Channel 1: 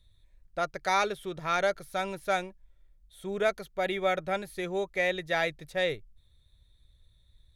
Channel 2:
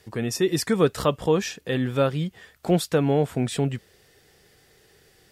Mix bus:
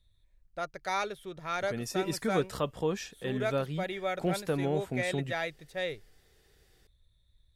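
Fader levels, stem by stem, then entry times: -5.5 dB, -9.5 dB; 0.00 s, 1.55 s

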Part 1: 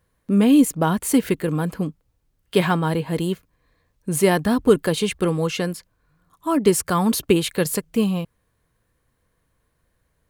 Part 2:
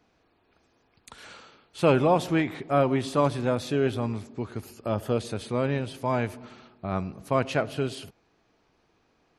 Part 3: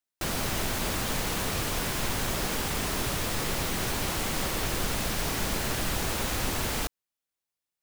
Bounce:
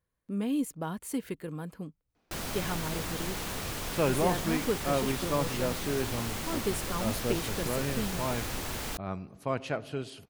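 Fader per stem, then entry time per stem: -15.5 dB, -7.0 dB, -6.0 dB; 0.00 s, 2.15 s, 2.10 s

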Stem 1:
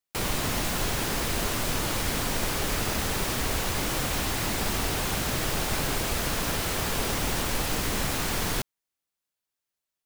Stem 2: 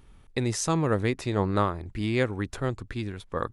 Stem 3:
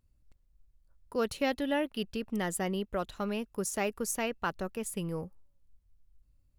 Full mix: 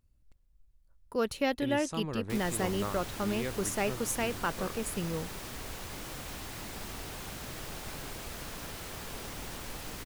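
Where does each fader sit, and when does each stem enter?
-13.5 dB, -12.0 dB, +0.5 dB; 2.15 s, 1.25 s, 0.00 s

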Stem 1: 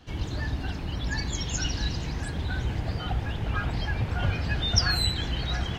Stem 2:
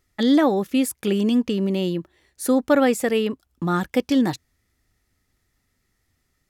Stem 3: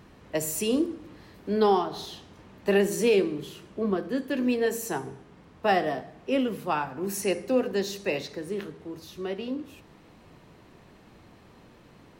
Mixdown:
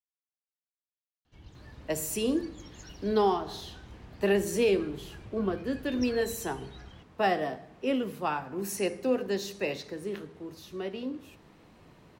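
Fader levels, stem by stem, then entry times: -20.0 dB, mute, -3.0 dB; 1.25 s, mute, 1.55 s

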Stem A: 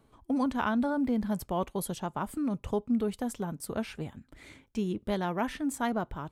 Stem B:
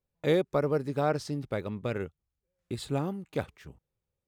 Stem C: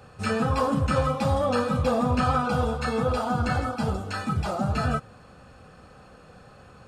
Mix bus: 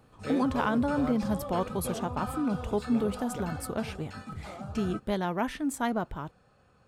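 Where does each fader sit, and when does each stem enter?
+1.0 dB, -10.5 dB, -14.0 dB; 0.00 s, 0.00 s, 0.00 s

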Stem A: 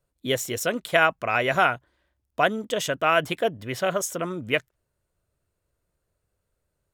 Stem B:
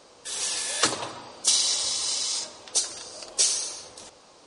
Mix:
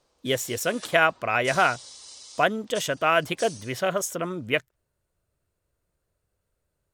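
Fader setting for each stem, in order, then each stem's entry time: -0.5 dB, -17.5 dB; 0.00 s, 0.00 s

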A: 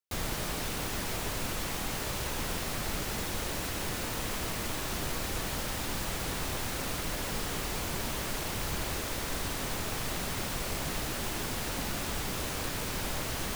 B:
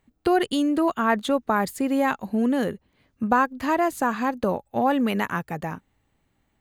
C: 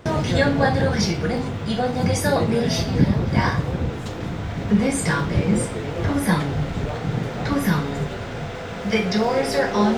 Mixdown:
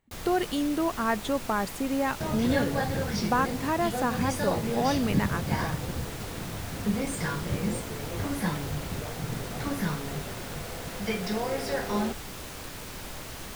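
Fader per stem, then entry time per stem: -5.5 dB, -5.5 dB, -10.0 dB; 0.00 s, 0.00 s, 2.15 s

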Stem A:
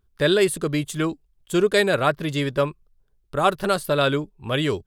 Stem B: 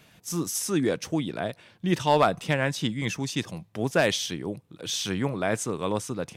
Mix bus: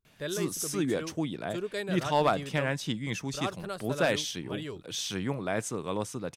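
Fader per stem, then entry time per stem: -16.0 dB, -4.5 dB; 0.00 s, 0.05 s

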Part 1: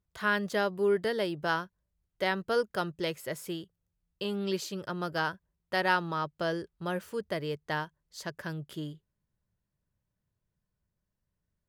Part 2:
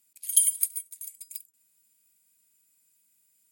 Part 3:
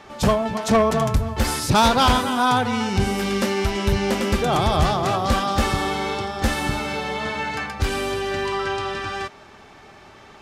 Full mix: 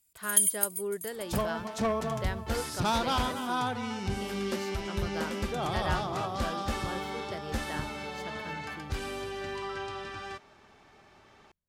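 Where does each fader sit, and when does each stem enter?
-8.0 dB, -2.5 dB, -12.0 dB; 0.00 s, 0.00 s, 1.10 s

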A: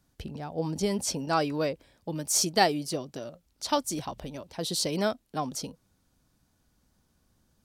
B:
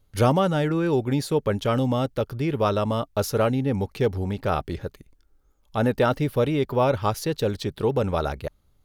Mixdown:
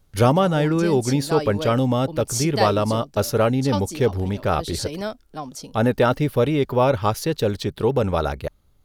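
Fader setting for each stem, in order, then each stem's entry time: -1.0 dB, +3.0 dB; 0.00 s, 0.00 s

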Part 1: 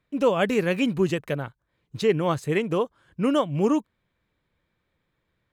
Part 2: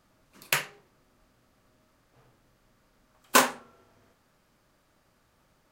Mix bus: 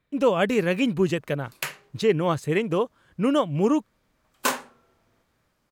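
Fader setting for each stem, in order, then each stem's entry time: +0.5 dB, -4.5 dB; 0.00 s, 1.10 s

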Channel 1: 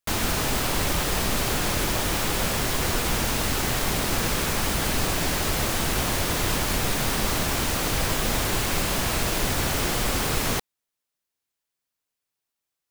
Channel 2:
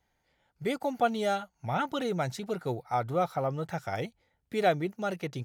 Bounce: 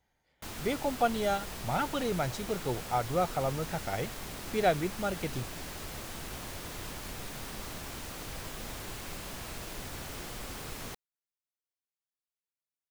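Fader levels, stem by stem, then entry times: -16.5 dB, -1.0 dB; 0.35 s, 0.00 s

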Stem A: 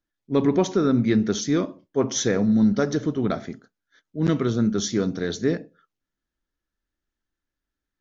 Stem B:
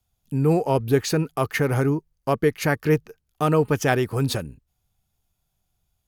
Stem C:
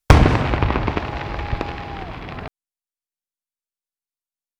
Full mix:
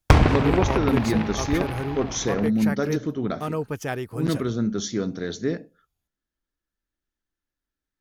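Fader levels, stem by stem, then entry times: -3.0 dB, -8.5 dB, -4.0 dB; 0.00 s, 0.00 s, 0.00 s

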